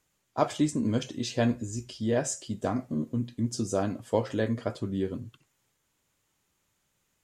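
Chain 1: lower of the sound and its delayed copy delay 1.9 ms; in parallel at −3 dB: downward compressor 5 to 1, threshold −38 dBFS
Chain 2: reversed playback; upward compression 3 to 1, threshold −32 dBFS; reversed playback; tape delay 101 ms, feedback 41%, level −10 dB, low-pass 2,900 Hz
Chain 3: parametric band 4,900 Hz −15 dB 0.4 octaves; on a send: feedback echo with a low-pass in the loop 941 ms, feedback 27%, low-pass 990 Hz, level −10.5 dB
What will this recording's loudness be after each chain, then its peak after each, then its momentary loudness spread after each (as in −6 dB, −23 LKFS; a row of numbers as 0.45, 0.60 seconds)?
−32.5, −30.0, −30.5 LKFS; −12.0, −10.5, −10.5 dBFS; 6, 20, 14 LU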